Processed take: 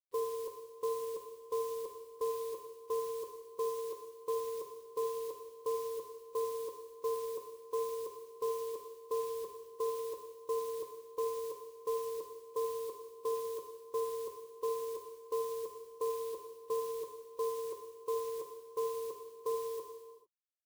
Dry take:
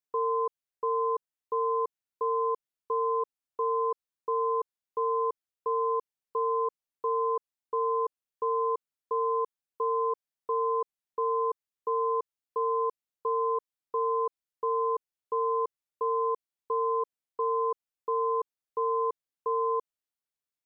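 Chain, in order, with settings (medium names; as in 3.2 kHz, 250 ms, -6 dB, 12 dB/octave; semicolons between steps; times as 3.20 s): coarse spectral quantiser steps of 15 dB; reverb removal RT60 1.4 s; companded quantiser 6-bit; peaking EQ 1 kHz -12.5 dB 1.8 oct; gated-style reverb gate 480 ms falling, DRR 3.5 dB; trim +2 dB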